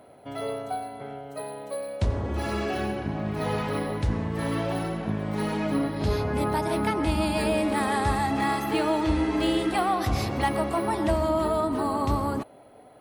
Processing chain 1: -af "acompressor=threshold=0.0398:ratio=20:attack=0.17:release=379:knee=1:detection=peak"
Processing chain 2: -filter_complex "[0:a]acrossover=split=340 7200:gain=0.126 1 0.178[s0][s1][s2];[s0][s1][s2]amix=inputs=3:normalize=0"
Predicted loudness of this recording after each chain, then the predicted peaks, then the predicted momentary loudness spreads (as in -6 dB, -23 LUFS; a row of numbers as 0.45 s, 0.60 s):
-36.0 LUFS, -30.0 LUFS; -26.5 dBFS, -13.0 dBFS; 3 LU, 10 LU